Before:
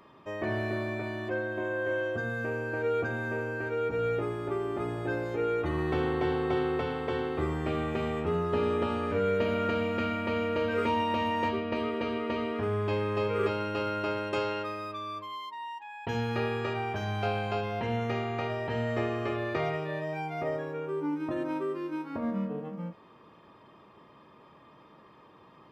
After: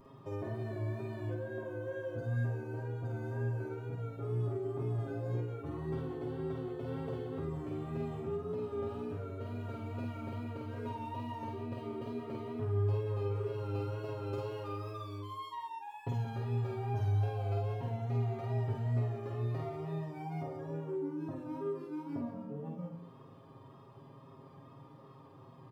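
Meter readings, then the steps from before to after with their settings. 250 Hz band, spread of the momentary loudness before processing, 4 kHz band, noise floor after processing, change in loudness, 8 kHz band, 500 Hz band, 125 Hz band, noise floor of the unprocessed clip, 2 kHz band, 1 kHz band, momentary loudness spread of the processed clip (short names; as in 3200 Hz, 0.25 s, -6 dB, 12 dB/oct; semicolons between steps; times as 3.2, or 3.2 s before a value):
-8.0 dB, 6 LU, -16.0 dB, -55 dBFS, -6.5 dB, n/a, -9.5 dB, +1.5 dB, -56 dBFS, -17.5 dB, -11.0 dB, 11 LU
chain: median filter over 5 samples; compressor, threshold -38 dBFS, peak gain reduction 14 dB; bell 110 Hz +10 dB 0.83 oct; wow and flutter 51 cents; bell 2200 Hz -11 dB 1.7 oct; comb 7.4 ms, depth 78%; loudspeakers at several distances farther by 17 m -3 dB, 61 m -10 dB; gain -3 dB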